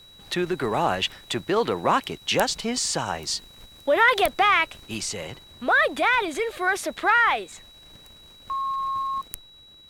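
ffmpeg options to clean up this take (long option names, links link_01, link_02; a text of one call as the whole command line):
ffmpeg -i in.wav -af "bandreject=frequency=3900:width=30" out.wav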